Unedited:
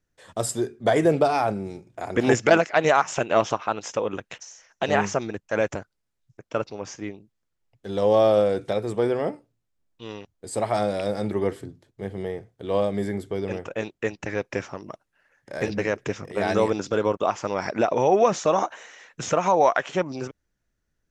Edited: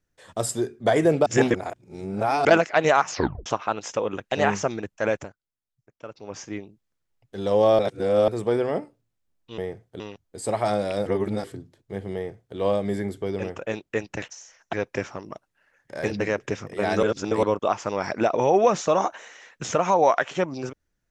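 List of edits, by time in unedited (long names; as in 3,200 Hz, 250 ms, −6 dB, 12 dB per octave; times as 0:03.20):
0:01.26–0:02.45: reverse
0:03.09: tape stop 0.37 s
0:04.32–0:04.83: move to 0:14.31
0:05.58–0:06.90: duck −13 dB, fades 0.27 s
0:08.30–0:08.79: reverse
0:11.15–0:11.53: reverse
0:12.24–0:12.66: duplicate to 0:10.09
0:16.61–0:17.01: reverse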